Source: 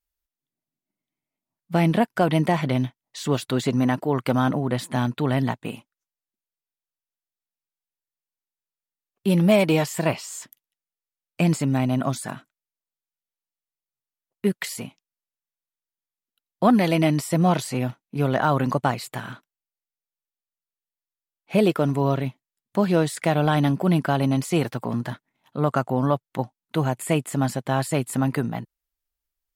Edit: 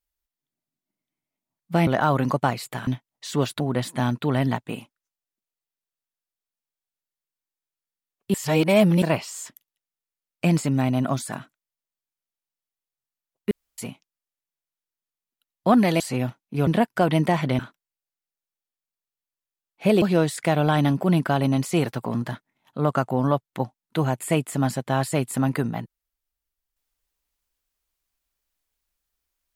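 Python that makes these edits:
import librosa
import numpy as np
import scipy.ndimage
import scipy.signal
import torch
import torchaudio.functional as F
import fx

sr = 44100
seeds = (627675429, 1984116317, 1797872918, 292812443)

y = fx.edit(x, sr, fx.swap(start_s=1.87, length_s=0.92, other_s=18.28, other_length_s=1.0),
    fx.cut(start_s=3.52, length_s=1.04),
    fx.reverse_span(start_s=9.3, length_s=0.68),
    fx.room_tone_fill(start_s=14.47, length_s=0.27),
    fx.cut(start_s=16.96, length_s=0.65),
    fx.cut(start_s=21.71, length_s=1.1), tone=tone)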